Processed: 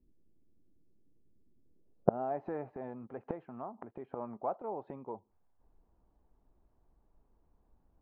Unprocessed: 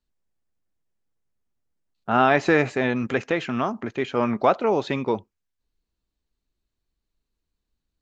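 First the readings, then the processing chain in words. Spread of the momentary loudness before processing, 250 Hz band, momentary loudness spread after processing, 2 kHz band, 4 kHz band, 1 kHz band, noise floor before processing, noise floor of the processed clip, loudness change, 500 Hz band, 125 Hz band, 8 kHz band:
9 LU, -17.5 dB, 13 LU, -32.5 dB, under -40 dB, -16.0 dB, -83 dBFS, -73 dBFS, -16.5 dB, -14.5 dB, -14.5 dB, n/a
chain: flipped gate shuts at -24 dBFS, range -32 dB; low-pass sweep 320 Hz -> 840 Hz, 1.62–2.44; gain +10.5 dB

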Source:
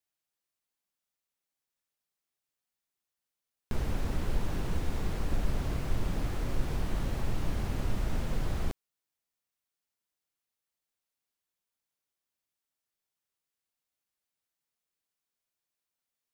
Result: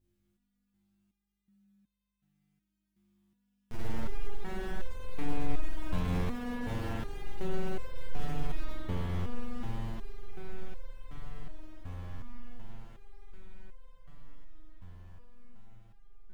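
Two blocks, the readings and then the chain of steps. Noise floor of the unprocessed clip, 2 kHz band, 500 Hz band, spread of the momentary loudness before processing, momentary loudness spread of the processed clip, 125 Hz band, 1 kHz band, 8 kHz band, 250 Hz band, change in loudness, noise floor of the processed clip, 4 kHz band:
under -85 dBFS, -0.5 dB, +0.5 dB, 2 LU, 19 LU, -2.5 dB, +0.5 dB, -7.5 dB, +0.5 dB, -4.5 dB, -82 dBFS, -3.0 dB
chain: diffused feedback echo 1.185 s, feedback 59%, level -9.5 dB; soft clip -30 dBFS, distortion -9 dB; buzz 50 Hz, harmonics 7, -70 dBFS -7 dB/oct; spring tank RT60 3.9 s, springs 45 ms, chirp 55 ms, DRR -6 dB; stepped resonator 2.7 Hz 88–520 Hz; gain +8 dB

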